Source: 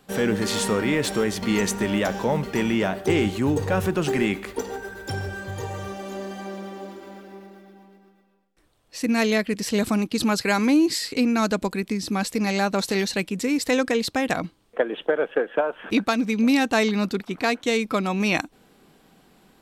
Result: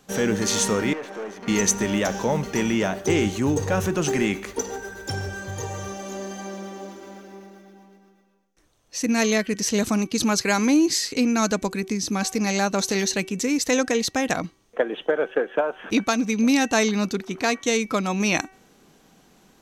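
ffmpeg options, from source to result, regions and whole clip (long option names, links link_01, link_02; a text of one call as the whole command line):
ffmpeg -i in.wav -filter_complex "[0:a]asettb=1/sr,asplit=3[link_01][link_02][link_03];[link_01]atrim=end=0.934[link_04];[link_02]atrim=start=0.93:end=1.48,asetpts=PTS-STARTPTS,afade=type=in:duration=0.004:curve=qsin,afade=type=out:start_time=0.546:duration=0.004:curve=qsin,aeval=exprs='(tanh(25.1*val(0)+0.65)-tanh(0.65))/25.1':channel_layout=same,acrossover=split=2800[link_05][link_06];[link_06]acompressor=threshold=-40dB:ratio=4:attack=1:release=60[link_07];[link_05][link_07]amix=inputs=2:normalize=0,acrossover=split=230 2700:gain=0.0708 1 0.2[link_08][link_09][link_10];[link_08][link_09][link_10]amix=inputs=3:normalize=0[link_11];[link_03]atrim=start=1.476[link_12];[link_04][link_11]acrossfade=duration=0.004:curve1=hsin:curve2=qsin[link_13];[link_13][link_12]acrossfade=duration=0.004:curve1=qsin:curve2=hsin,equalizer=frequency=6200:width_type=o:width=0.27:gain=13,bandreject=frequency=380.6:width_type=h:width=4,bandreject=frequency=761.2:width_type=h:width=4,bandreject=frequency=1141.8:width_type=h:width=4,bandreject=frequency=1522.4:width_type=h:width=4,bandreject=frequency=1903:width_type=h:width=4,bandreject=frequency=2283.6:width_type=h:width=4,bandreject=frequency=2664.2:width_type=h:width=4,bandreject=frequency=3044.8:width_type=h:width=4" out.wav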